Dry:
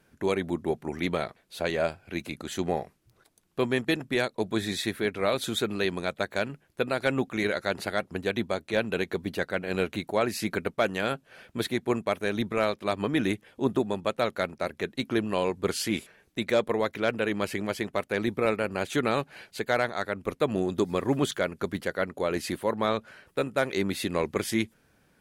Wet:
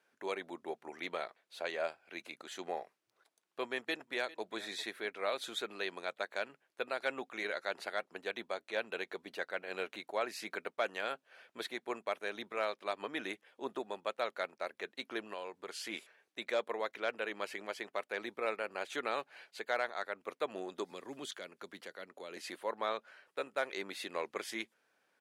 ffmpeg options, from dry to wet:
ffmpeg -i in.wav -filter_complex "[0:a]asplit=2[link_01][link_02];[link_02]afade=type=in:start_time=3.67:duration=0.01,afade=type=out:start_time=4.43:duration=0.01,aecho=0:1:400|800:0.125893|0.0188839[link_03];[link_01][link_03]amix=inputs=2:normalize=0,asettb=1/sr,asplit=3[link_04][link_05][link_06];[link_04]atrim=end=15.334[link_07];[link_05]atrim=start=15.33:end=15.85,asetpts=PTS-STARTPTS,afade=type=in:duration=0.004:curve=qsin,afade=type=out:start_time=0.516:duration=0.004:curve=qsin,acompressor=threshold=-30dB:ratio=2.5:attack=3.2:release=140:knee=1:detection=peak[link_08];[link_06]atrim=start=15.846[link_09];[link_07][link_08]acrossfade=duration=0.004:curve1=hsin:curve2=qsin[link_10];[link_10][link_09]acrossfade=duration=0.004:curve1=qsin:curve2=hsin,asettb=1/sr,asplit=3[link_11][link_12][link_13];[link_11]atrim=end=20.914[link_14];[link_12]atrim=start=20.91:end=22.37,asetpts=PTS-STARTPTS,afade=type=in:duration=0.004:curve=qsin,afade=type=out:start_time=1.456:duration=0.004:curve=qsin,acrossover=split=320|3000[link_15][link_16][link_17];[link_16]acompressor=threshold=-39dB:ratio=4:attack=3.2:release=140:knee=2.83:detection=peak[link_18];[link_15][link_18][link_17]amix=inputs=3:normalize=0[link_19];[link_13]atrim=start=22.366[link_20];[link_14][link_19]acrossfade=duration=0.004:curve1=hsin:curve2=qsin[link_21];[link_21][link_20]acrossfade=duration=0.004:curve1=qsin:curve2=hsin,highpass=540,highshelf=frequency=9400:gain=-12,volume=-7dB" out.wav

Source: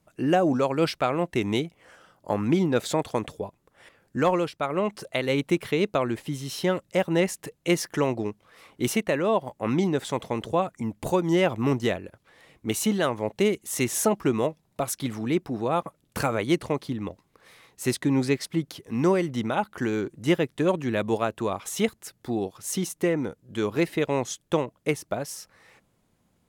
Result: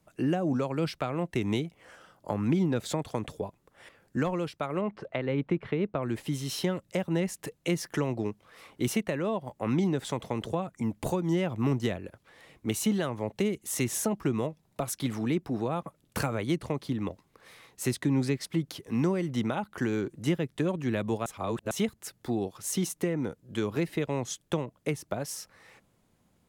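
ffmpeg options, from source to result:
ffmpeg -i in.wav -filter_complex "[0:a]asettb=1/sr,asplit=3[link_01][link_02][link_03];[link_01]atrim=end=4.814[link_04];[link_02]atrim=start=4.81:end=6.03,asetpts=PTS-STARTPTS,afade=type=in:duration=0.004:curve=qsin,afade=type=out:start_time=1.216:duration=0.004:curve=qsin,lowpass=2000[link_05];[link_03]atrim=start=6.026[link_06];[link_04][link_05]acrossfade=duration=0.004:curve1=hsin:curve2=qsin[link_07];[link_07][link_06]acrossfade=duration=0.004:curve1=qsin:curve2=hsin,asplit=3[link_08][link_09][link_10];[link_08]atrim=end=21.262[link_11];[link_09]atrim=start=21.258:end=21.712,asetpts=PTS-STARTPTS,areverse[link_12];[link_10]atrim=start=21.708[link_13];[link_11][link_12]acrossfade=duration=0.004:curve1=hsin:curve2=hsin[link_14];[link_14][link_13]acrossfade=duration=0.004:curve1=hsin:curve2=hsin,acrossover=split=220[link_15][link_16];[link_16]acompressor=threshold=-29dB:ratio=6[link_17];[link_15][link_17]amix=inputs=2:normalize=0" out.wav

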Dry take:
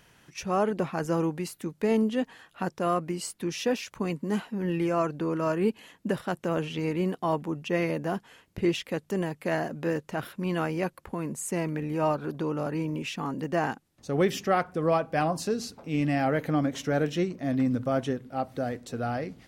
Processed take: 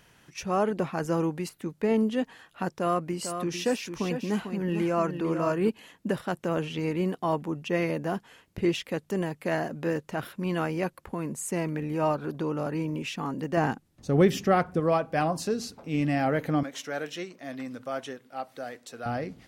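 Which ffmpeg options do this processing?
ffmpeg -i in.wav -filter_complex "[0:a]asettb=1/sr,asplit=3[link_01][link_02][link_03];[link_01]atrim=end=1.494[link_04];[link_02]atrim=start=1.49:end=2.11,asetpts=PTS-STARTPTS,afade=type=in:duration=0.004:curve=qsin,afade=type=out:start_time=0.616:duration=0.004:curve=qsin,acrossover=split=3400[link_05][link_06];[link_06]acompressor=threshold=-52dB:ratio=4:attack=1:release=60[link_07];[link_05][link_07]amix=inputs=2:normalize=0[link_08];[link_03]atrim=start=2.106[link_09];[link_04][link_08]acrossfade=duration=0.004:curve1=hsin:curve2=qsin[link_10];[link_10][link_09]acrossfade=duration=0.004:curve1=qsin:curve2=hsin,asettb=1/sr,asplit=3[link_11][link_12][link_13];[link_11]atrim=end=2.684[link_14];[link_12]atrim=start=2.68:end=5.69,asetpts=PTS-STARTPTS,afade=type=in:duration=0.004:curve=qsin,afade=type=out:start_time=3.006:duration=0.004:curve=qsin,aecho=1:1:448:0.398,atrim=end_sample=132741[link_15];[link_13]atrim=start=5.686[link_16];[link_14][link_15]acrossfade=duration=0.004:curve1=hsin:curve2=qsin[link_17];[link_17][link_16]acrossfade=duration=0.004:curve1=qsin:curve2=hsin,asettb=1/sr,asplit=3[link_18][link_19][link_20];[link_18]atrim=end=13.574[link_21];[link_19]atrim=start=13.57:end=14.8,asetpts=PTS-STARTPTS,afade=type=in:duration=0.004:curve=qsin,afade=type=out:start_time=1.226:duration=0.004:curve=qsin,lowshelf=frequency=320:gain=8[link_22];[link_20]atrim=start=14.796[link_23];[link_21][link_22]acrossfade=duration=0.004:curve1=hsin:curve2=qsin[link_24];[link_24][link_23]acrossfade=duration=0.004:curve1=qsin:curve2=hsin,asettb=1/sr,asplit=3[link_25][link_26][link_27];[link_25]atrim=end=16.634[link_28];[link_26]atrim=start=16.63:end=19.06,asetpts=PTS-STARTPTS,afade=type=in:duration=0.004:curve=qsin,afade=type=out:start_time=2.426:duration=0.004:curve=qsin,highpass=frequency=1000:poles=1[link_29];[link_27]atrim=start=19.056[link_30];[link_28][link_29]acrossfade=duration=0.004:curve1=hsin:curve2=qsin[link_31];[link_31][link_30]acrossfade=duration=0.004:curve1=qsin:curve2=hsin" out.wav

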